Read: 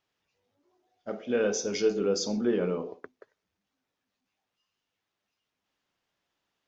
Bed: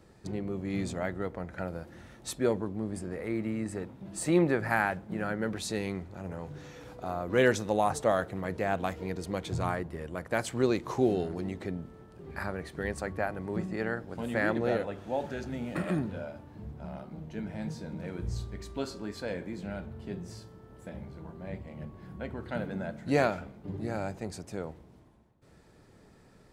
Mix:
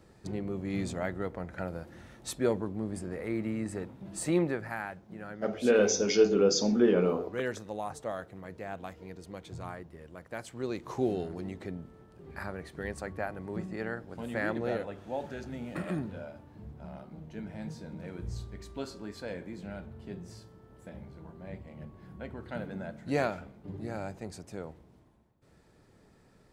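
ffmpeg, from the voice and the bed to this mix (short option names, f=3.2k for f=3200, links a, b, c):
-filter_complex "[0:a]adelay=4350,volume=3dB[a];[1:a]volume=6dB,afade=t=out:st=4.17:d=0.58:silence=0.334965,afade=t=in:st=10.59:d=0.42:silence=0.473151[b];[a][b]amix=inputs=2:normalize=0"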